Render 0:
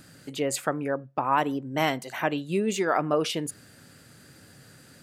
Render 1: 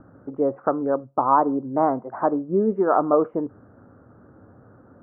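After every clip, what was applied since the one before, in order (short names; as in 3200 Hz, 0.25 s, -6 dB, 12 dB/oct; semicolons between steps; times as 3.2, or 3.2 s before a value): steep low-pass 1300 Hz 48 dB/oct; bell 150 Hz -11.5 dB 0.41 oct; gain +6.5 dB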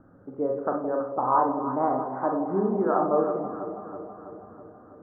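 echo with dull and thin repeats by turns 0.163 s, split 810 Hz, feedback 78%, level -7.5 dB; Schroeder reverb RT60 0.33 s, combs from 31 ms, DRR 2 dB; gain -6.5 dB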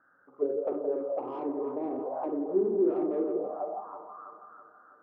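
soft clip -22.5 dBFS, distortion -11 dB; auto-wah 360–1700 Hz, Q 5.2, down, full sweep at -25.5 dBFS; gain +7 dB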